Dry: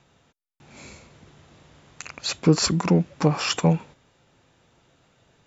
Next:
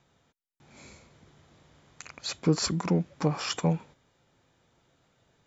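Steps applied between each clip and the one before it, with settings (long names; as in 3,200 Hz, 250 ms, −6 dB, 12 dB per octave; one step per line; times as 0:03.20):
notch filter 2,700 Hz, Q 14
level −6.5 dB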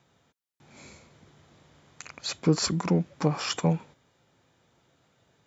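high-pass filter 67 Hz
level +1.5 dB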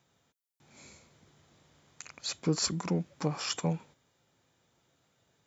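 high-shelf EQ 5,200 Hz +8.5 dB
level −6.5 dB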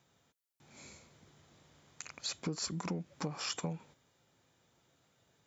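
downward compressor 6 to 1, threshold −34 dBFS, peak gain reduction 11.5 dB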